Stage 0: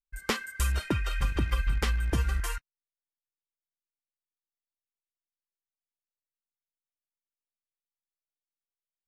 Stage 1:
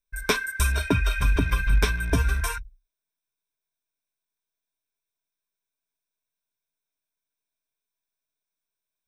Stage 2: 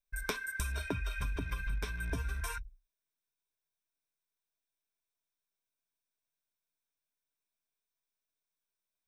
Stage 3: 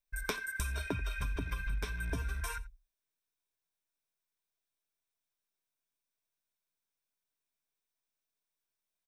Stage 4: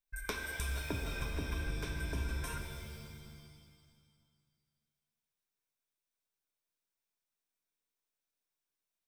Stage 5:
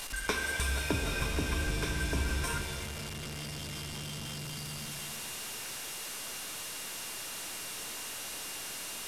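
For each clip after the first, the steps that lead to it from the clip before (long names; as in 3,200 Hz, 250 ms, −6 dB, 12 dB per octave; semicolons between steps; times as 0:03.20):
EQ curve with evenly spaced ripples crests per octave 1.6, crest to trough 12 dB; level +4.5 dB
downward compressor 6 to 1, threshold −29 dBFS, peak gain reduction 13 dB; level −4 dB
single-tap delay 87 ms −20 dB
reverb with rising layers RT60 1.9 s, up +7 semitones, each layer −2 dB, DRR 5.5 dB; level −3.5 dB
linear delta modulator 64 kbit/s, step −40.5 dBFS; steady tone 2,800 Hz −58 dBFS; low-shelf EQ 70 Hz −6 dB; level +7.5 dB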